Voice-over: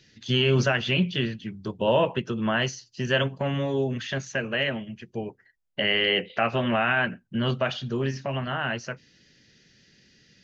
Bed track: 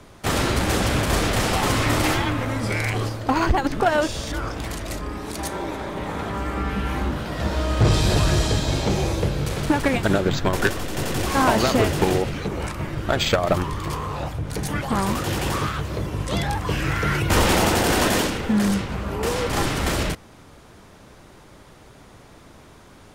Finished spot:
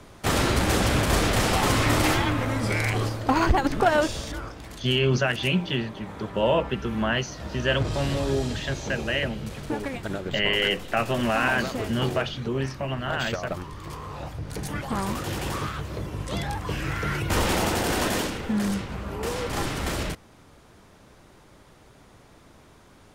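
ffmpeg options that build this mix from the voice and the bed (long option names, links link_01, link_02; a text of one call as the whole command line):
ffmpeg -i stem1.wav -i stem2.wav -filter_complex "[0:a]adelay=4550,volume=-0.5dB[link_01];[1:a]volume=5dB,afade=type=out:start_time=3.99:duration=0.58:silence=0.298538,afade=type=in:start_time=13.71:duration=0.81:silence=0.501187[link_02];[link_01][link_02]amix=inputs=2:normalize=0" out.wav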